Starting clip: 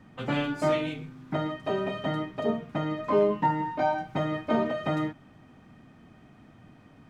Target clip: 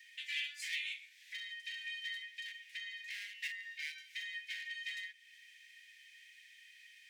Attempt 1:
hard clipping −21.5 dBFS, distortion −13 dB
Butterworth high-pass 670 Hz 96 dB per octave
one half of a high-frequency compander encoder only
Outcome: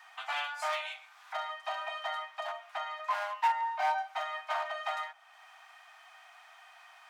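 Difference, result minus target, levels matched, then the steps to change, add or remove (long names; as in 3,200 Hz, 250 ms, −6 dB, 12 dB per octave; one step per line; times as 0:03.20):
2,000 Hz band −4.5 dB
change: Butterworth high-pass 1,800 Hz 96 dB per octave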